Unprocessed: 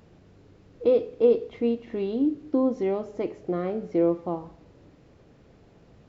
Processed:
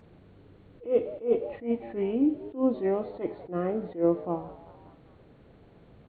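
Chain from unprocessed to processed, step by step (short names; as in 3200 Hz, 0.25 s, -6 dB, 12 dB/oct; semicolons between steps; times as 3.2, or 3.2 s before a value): nonlinear frequency compression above 1600 Hz 1.5:1; frequency-shifting echo 0.197 s, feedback 50%, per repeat +110 Hz, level -20.5 dB; attack slew limiter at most 210 dB/s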